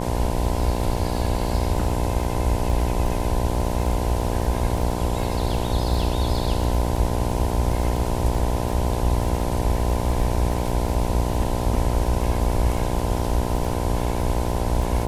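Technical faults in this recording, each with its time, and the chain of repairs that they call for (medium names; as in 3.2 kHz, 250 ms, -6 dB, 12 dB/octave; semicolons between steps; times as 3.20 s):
buzz 60 Hz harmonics 17 -26 dBFS
crackle 29 per s -29 dBFS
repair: de-click; de-hum 60 Hz, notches 17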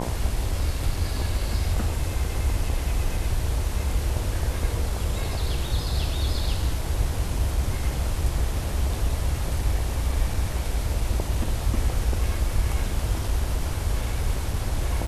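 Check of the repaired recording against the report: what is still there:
nothing left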